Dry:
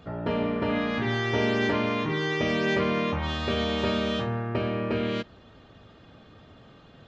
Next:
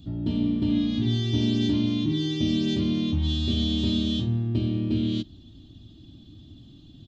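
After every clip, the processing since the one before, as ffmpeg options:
-af "firequalizer=gain_entry='entry(100,0);entry(180,-6);entry(310,1);entry(450,-26);entry(670,-22);entry(1300,-30);entry(2200,-24);entry(3400,-2);entry(5200,-7);entry(8300,-4)':delay=0.05:min_phase=1,volume=7.5dB"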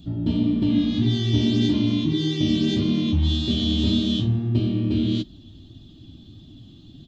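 -af "flanger=delay=4.4:depth=8.5:regen=-31:speed=1.7:shape=triangular,volume=7dB"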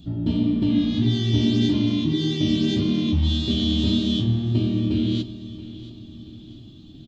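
-af "aecho=1:1:679|1358|2037|2716:0.158|0.0761|0.0365|0.0175"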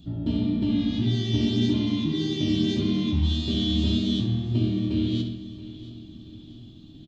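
-filter_complex "[0:a]asplit=2[a][b];[b]adelay=67,lowpass=f=4.3k:p=1,volume=-6dB,asplit=2[c][d];[d]adelay=67,lowpass=f=4.3k:p=1,volume=0.54,asplit=2[e][f];[f]adelay=67,lowpass=f=4.3k:p=1,volume=0.54,asplit=2[g][h];[h]adelay=67,lowpass=f=4.3k:p=1,volume=0.54,asplit=2[i][j];[j]adelay=67,lowpass=f=4.3k:p=1,volume=0.54,asplit=2[k][l];[l]adelay=67,lowpass=f=4.3k:p=1,volume=0.54,asplit=2[m][n];[n]adelay=67,lowpass=f=4.3k:p=1,volume=0.54[o];[a][c][e][g][i][k][m][o]amix=inputs=8:normalize=0,volume=-3.5dB"

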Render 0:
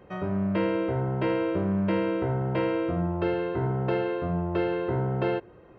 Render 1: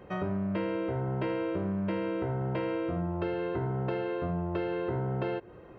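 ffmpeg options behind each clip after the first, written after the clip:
-af "acompressor=threshold=-31dB:ratio=5,volume=2dB"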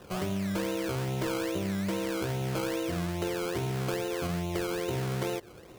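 -af "acrusher=samples=19:mix=1:aa=0.000001:lfo=1:lforange=11.4:lforate=2.4"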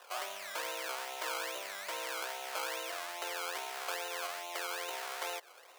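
-af "highpass=f=670:w=0.5412,highpass=f=670:w=1.3066"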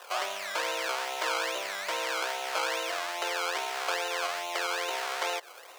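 -filter_complex "[0:a]acrossover=split=7600[a][b];[b]acompressor=threshold=-52dB:ratio=4:attack=1:release=60[c];[a][c]amix=inputs=2:normalize=0,volume=8dB"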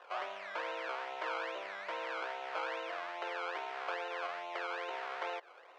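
-af "lowpass=2.3k,volume=-6.5dB"

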